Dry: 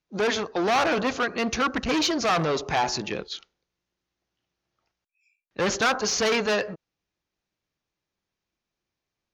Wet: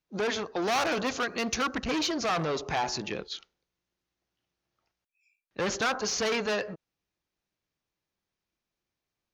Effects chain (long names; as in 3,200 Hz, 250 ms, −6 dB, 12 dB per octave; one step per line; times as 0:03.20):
0:00.62–0:01.75: high-shelf EQ 5,600 Hz +11.5 dB
in parallel at −1 dB: downward compressor, threshold −29 dBFS, peak gain reduction 10 dB
on the sum: level −8 dB